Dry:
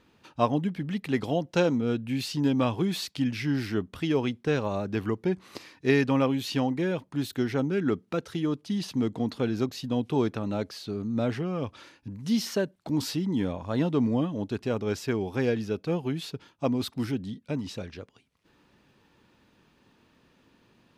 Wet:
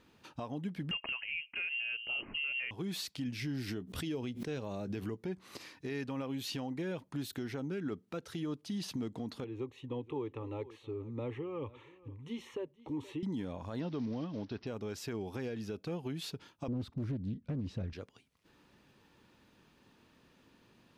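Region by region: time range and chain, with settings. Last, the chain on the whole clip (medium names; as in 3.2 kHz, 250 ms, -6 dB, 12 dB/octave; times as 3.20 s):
0.91–2.71 s: peaking EQ 720 Hz +8.5 dB 2.2 oct + frequency inversion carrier 3 kHz
3.26–5.20 s: peaking EQ 1.2 kHz -6 dB 1.5 oct + doubling 16 ms -14 dB + swell ahead of each attack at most 110 dB/s
9.44–13.23 s: tape spacing loss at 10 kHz 22 dB + static phaser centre 1 kHz, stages 8 + delay 475 ms -22 dB
13.80–14.67 s: block-companded coder 5-bit + steep low-pass 5.7 kHz 72 dB/octave
16.68–17.93 s: RIAA curve playback + loudspeaker Doppler distortion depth 0.43 ms
whole clip: treble shelf 5.9 kHz +3.5 dB; compression 3:1, threshold -33 dBFS; peak limiter -26.5 dBFS; trim -2.5 dB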